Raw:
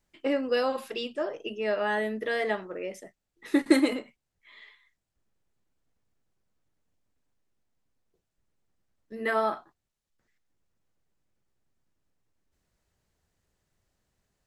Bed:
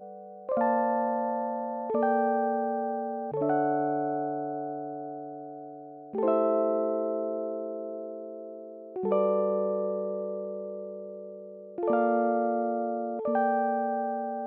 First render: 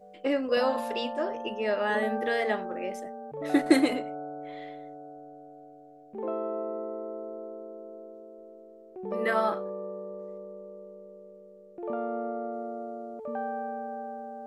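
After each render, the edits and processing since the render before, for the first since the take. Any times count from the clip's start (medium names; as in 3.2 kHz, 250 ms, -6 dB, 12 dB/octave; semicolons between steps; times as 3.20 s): add bed -7.5 dB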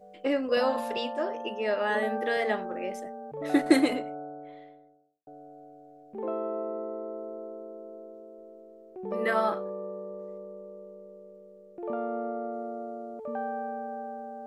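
0.97–2.37 s: high-pass 200 Hz; 3.88–5.27 s: studio fade out; 6.42–7.15 s: brick-wall FIR low-pass 7.3 kHz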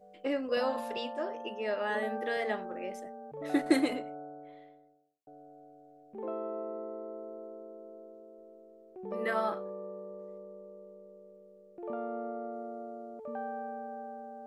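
trim -5 dB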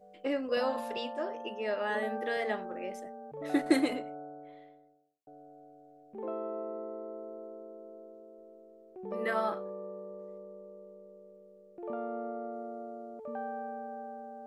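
no audible change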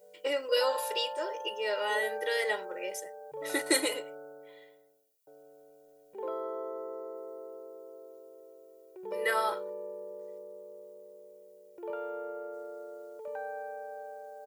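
RIAA curve recording; comb 2.1 ms, depth 98%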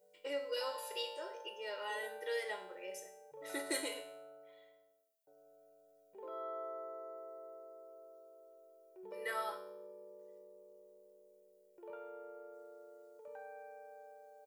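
saturation -14 dBFS, distortion -28 dB; feedback comb 94 Hz, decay 0.66 s, harmonics all, mix 80%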